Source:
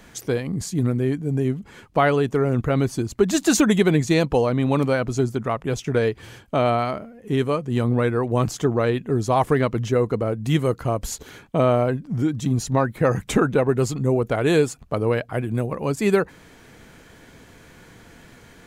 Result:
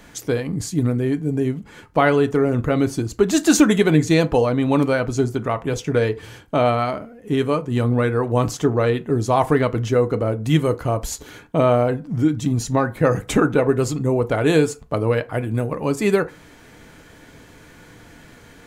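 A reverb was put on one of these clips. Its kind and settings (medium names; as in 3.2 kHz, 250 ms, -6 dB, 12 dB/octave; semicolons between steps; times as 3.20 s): FDN reverb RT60 0.32 s, low-frequency decay 0.8×, high-frequency decay 0.6×, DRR 9.5 dB; trim +1.5 dB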